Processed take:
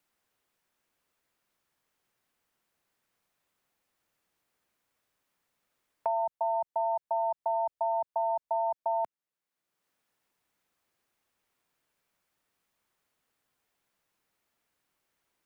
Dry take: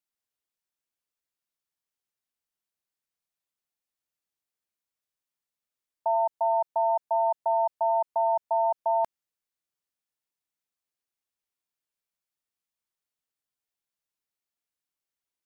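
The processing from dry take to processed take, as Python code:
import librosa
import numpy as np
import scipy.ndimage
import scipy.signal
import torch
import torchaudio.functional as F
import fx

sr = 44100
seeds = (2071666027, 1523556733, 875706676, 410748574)

y = fx.band_squash(x, sr, depth_pct=70)
y = y * 10.0 ** (-5.0 / 20.0)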